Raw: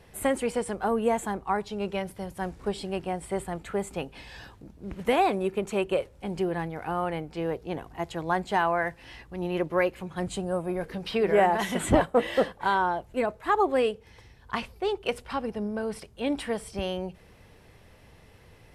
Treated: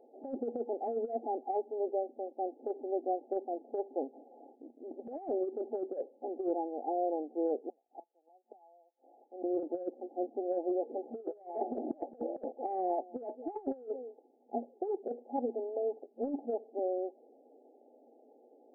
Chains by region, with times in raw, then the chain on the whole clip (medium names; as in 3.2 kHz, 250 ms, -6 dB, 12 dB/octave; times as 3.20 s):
7.69–9.44 s: high-pass 590 Hz + inverted gate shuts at -30 dBFS, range -31 dB
10.91–14.58 s: waveshaping leveller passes 1 + delay 211 ms -24 dB
whole clip: FFT band-pass 230–860 Hz; compressor with a negative ratio -29 dBFS, ratio -0.5; trim -4.5 dB